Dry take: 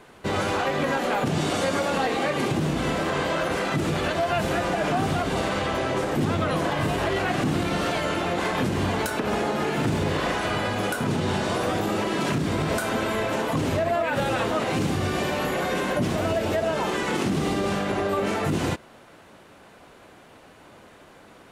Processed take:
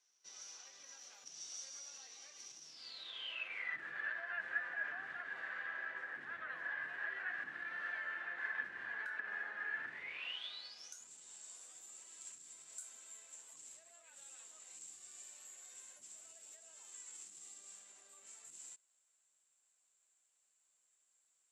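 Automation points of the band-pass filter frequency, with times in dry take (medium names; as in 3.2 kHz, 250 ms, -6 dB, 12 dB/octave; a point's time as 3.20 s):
band-pass filter, Q 17
2.63 s 5.8 kHz
3.84 s 1.7 kHz
9.88 s 1.7 kHz
11.08 s 7.5 kHz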